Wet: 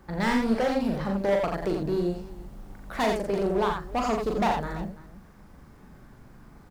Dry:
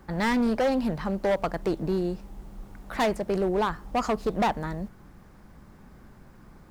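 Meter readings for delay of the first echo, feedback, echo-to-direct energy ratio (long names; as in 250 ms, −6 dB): 40 ms, repeats not evenly spaced, −1.5 dB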